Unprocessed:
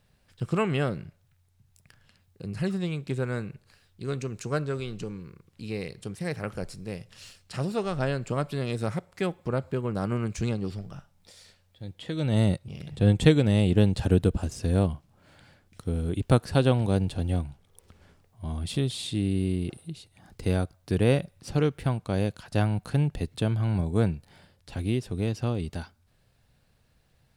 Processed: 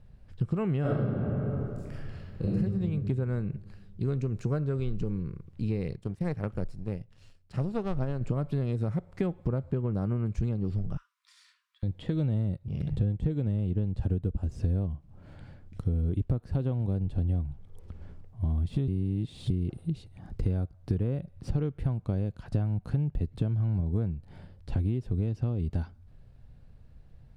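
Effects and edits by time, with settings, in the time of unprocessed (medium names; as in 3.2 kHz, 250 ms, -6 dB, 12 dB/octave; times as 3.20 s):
0.81–2.56 s: reverb throw, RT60 1.8 s, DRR -10.5 dB
5.96–8.21 s: power-law waveshaper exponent 1.4
10.97–11.83 s: brick-wall FIR high-pass 950 Hz
18.88–19.50 s: reverse
whole clip: de-esser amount 90%; tilt EQ -3.5 dB/octave; compression 10:1, threshold -25 dBFS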